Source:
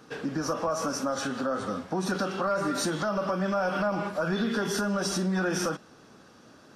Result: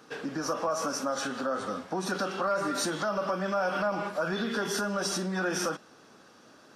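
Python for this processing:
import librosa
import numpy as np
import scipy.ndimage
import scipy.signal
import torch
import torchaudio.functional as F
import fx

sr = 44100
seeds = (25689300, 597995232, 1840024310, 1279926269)

y = fx.low_shelf(x, sr, hz=180.0, db=-11.5)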